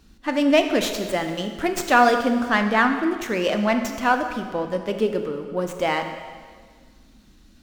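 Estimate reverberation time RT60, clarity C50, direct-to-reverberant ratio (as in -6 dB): 1.7 s, 7.5 dB, 6.0 dB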